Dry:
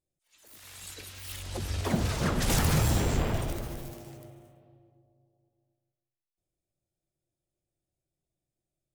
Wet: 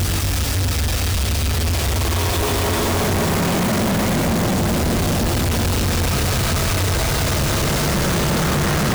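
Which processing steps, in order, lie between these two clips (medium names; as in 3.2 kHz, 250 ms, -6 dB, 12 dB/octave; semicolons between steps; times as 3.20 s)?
Paulstretch 15×, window 0.25 s, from 1.67 s; companded quantiser 2-bit; trim +7.5 dB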